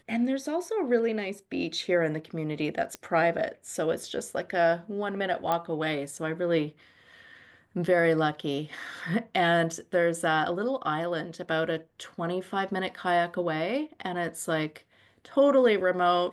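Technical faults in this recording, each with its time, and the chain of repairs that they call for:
2.95 pop -20 dBFS
5.52 pop -14 dBFS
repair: de-click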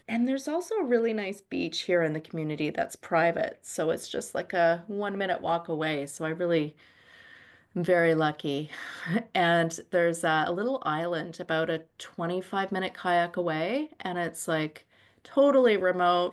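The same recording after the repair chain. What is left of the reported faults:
none

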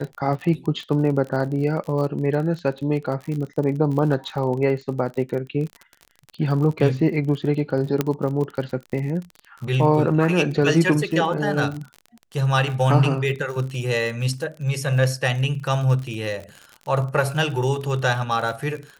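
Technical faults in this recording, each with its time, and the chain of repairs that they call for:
crackle 42/s -29 dBFS
8.01 pop -6 dBFS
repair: de-click

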